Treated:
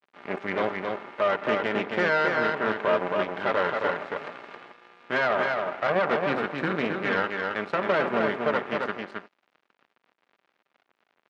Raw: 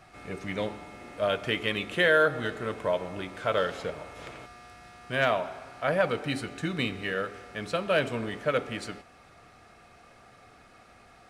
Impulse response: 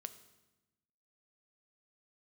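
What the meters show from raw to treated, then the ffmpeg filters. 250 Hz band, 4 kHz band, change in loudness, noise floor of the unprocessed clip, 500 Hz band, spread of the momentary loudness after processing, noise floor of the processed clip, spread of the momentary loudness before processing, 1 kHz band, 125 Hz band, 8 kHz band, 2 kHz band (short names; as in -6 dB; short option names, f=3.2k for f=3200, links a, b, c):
+3.0 dB, -3.0 dB, +2.5 dB, -55 dBFS, +2.5 dB, 11 LU, -78 dBFS, 16 LU, +5.5 dB, -2.5 dB, n/a, +3.0 dB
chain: -filter_complex "[0:a]equalizer=f=1.5k:t=o:w=0.28:g=6.5,aecho=1:1:5:0.41,acrossover=split=1700[a][b];[b]acompressor=threshold=-42dB:ratio=6[c];[a][c]amix=inputs=2:normalize=0,alimiter=limit=-19.5dB:level=0:latency=1:release=94,aeval=exprs='0.106*(cos(1*acos(clip(val(0)/0.106,-1,1)))-cos(1*PI/2))+0.0376*(cos(4*acos(clip(val(0)/0.106,-1,1)))-cos(4*PI/2))+0.00473*(cos(8*acos(clip(val(0)/0.106,-1,1)))-cos(8*PI/2))':c=same,aeval=exprs='sgn(val(0))*max(abs(val(0))-0.00531,0)':c=same,acrusher=bits=7:mode=log:mix=0:aa=0.000001,highpass=250,lowpass=2.4k,asplit=2[d][e];[e]aecho=0:1:269:0.631[f];[d][f]amix=inputs=2:normalize=0,volume=4.5dB"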